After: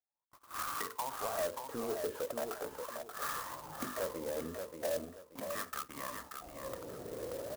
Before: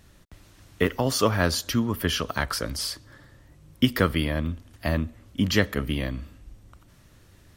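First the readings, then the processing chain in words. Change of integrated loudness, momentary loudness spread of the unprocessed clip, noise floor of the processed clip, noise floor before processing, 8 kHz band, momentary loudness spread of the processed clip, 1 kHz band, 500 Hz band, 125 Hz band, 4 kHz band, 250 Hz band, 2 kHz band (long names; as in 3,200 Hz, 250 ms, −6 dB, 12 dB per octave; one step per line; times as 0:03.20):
−14.0 dB, 11 LU, −67 dBFS, −55 dBFS, −10.0 dB, 8 LU, −7.0 dB, −8.5 dB, −26.5 dB, −18.5 dB, −20.0 dB, −15.0 dB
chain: camcorder AGC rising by 55 dB per second
mains-hum notches 50/100/150/200/250/300/350/400/450 Hz
noise gate −26 dBFS, range −32 dB
dynamic equaliser 1,600 Hz, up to +7 dB, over −38 dBFS, Q 0.96
LFO wah 0.39 Hz 450–1,200 Hz, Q 8.3
soft clipping −32 dBFS, distortion −8 dB
high-frequency loss of the air 240 metres
repeating echo 581 ms, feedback 27%, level −6 dB
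converter with an unsteady clock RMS 0.075 ms
level +2 dB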